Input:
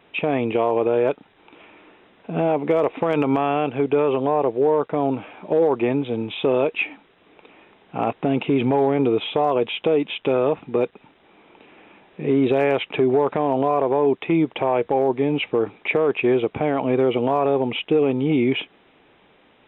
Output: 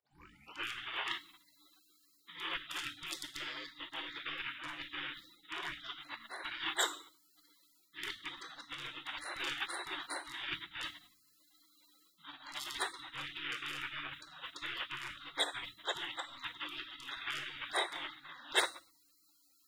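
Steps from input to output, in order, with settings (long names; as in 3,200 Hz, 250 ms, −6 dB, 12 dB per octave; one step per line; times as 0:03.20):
turntable start at the beginning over 0.67 s
parametric band 2,300 Hz −8 dB 0.4 octaves
reversed playback
downward compressor 8 to 1, threshold −28 dBFS, peak gain reduction 13.5 dB
reversed playback
elliptic high-pass filter 410 Hz, stop band 40 dB
notch filter 1,300 Hz, Q 11
in parallel at −11 dB: soft clipping −28.5 dBFS, distortion −16 dB
on the sum: tilt shelving filter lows −8.5 dB
harmonic and percussive parts rebalanced percussive +7 dB
convolution reverb RT60 0.70 s, pre-delay 3 ms, DRR 3 dB
gate on every frequency bin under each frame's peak −30 dB weak
level +8 dB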